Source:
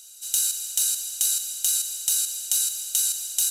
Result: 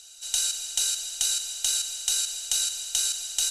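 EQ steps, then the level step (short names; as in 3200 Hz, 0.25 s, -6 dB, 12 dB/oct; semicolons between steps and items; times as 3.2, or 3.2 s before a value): air absorption 79 m; +5.5 dB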